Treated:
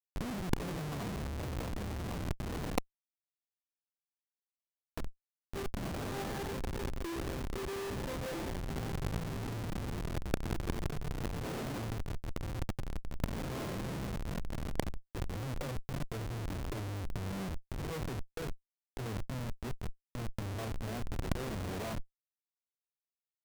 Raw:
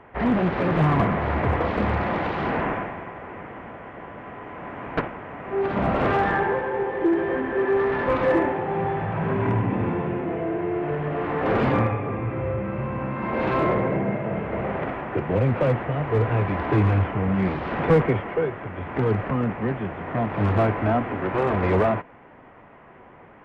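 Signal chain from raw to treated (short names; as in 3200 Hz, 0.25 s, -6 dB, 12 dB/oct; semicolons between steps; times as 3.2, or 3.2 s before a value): Schmitt trigger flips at -21 dBFS; negative-ratio compressor -30 dBFS, ratio -0.5; gain -4 dB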